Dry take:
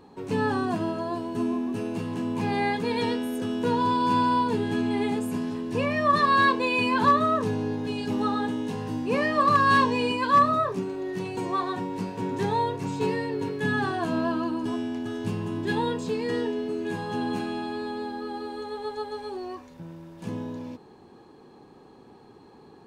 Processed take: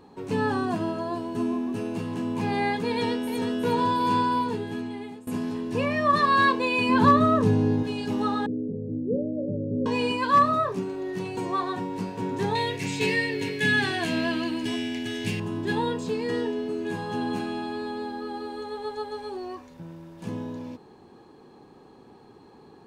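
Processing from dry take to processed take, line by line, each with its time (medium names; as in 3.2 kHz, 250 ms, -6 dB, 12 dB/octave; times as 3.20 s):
2.91–3.62 s: echo throw 360 ms, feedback 70%, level -7 dB
4.12–5.27 s: fade out, to -20.5 dB
6.89–7.83 s: bass shelf 340 Hz +10 dB
8.46–9.86 s: steep low-pass 570 Hz 72 dB/octave
12.55–15.40 s: resonant high shelf 1.6 kHz +8.5 dB, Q 3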